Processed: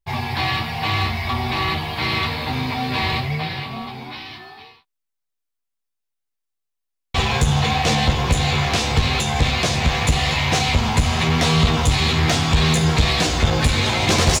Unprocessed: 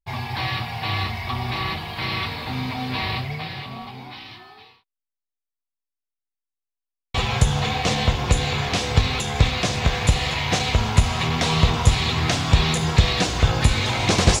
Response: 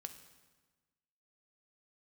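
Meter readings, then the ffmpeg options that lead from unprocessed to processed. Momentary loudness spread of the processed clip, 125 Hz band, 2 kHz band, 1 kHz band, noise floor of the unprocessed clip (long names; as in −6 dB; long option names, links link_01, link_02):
8 LU, +2.0 dB, +3.5 dB, +3.5 dB, below −85 dBFS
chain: -filter_complex "[0:a]asoftclip=type=tanh:threshold=-15.5dB,asplit=2[link_01][link_02];[link_02]adelay=13,volume=-5.5dB[link_03];[link_01][link_03]amix=inputs=2:normalize=0,volume=4dB"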